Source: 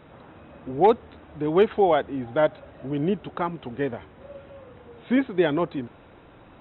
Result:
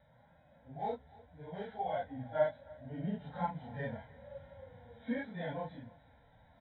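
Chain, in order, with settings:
random phases in long frames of 100 ms
speech leveller within 4 dB 0.5 s
phaser with its sweep stopped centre 1,800 Hz, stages 8
harmonic and percussive parts rebalanced percussive −12 dB
on a send: single-tap delay 301 ms −22.5 dB
on the sum: level −7 dB

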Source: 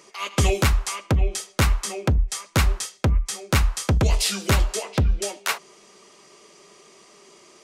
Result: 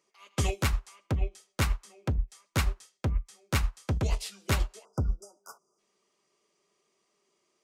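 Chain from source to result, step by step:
time-frequency box erased 0:04.85–0:05.79, 1,500–4,800 Hz
expander for the loud parts 2.5 to 1, over −27 dBFS
level −6.5 dB

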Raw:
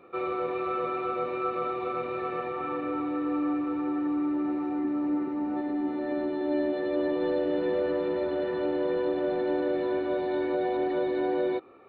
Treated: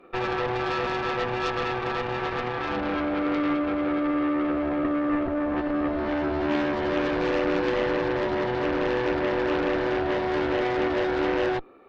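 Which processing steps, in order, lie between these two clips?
low shelf with overshoot 140 Hz −13 dB, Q 1.5
harmonic generator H 6 −20 dB, 8 −10 dB, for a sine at −15.5 dBFS

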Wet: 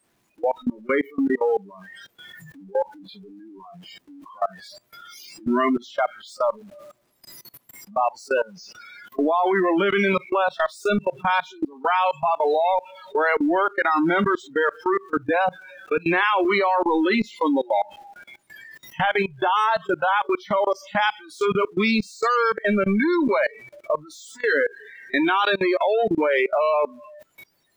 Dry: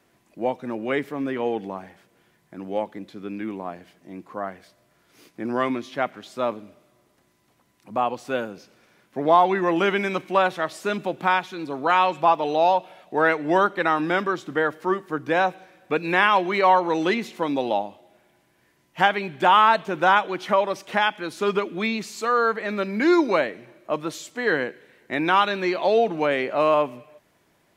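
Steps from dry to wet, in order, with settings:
converter with a step at zero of −20 dBFS
noise reduction from a noise print of the clip's start 30 dB
output level in coarse steps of 24 dB
level +4.5 dB

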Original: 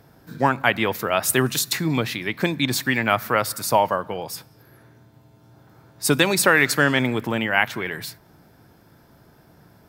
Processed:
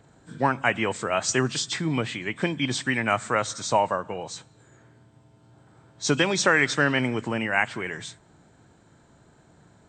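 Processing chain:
hearing-aid frequency compression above 2,500 Hz 1.5 to 1
level −3.5 dB

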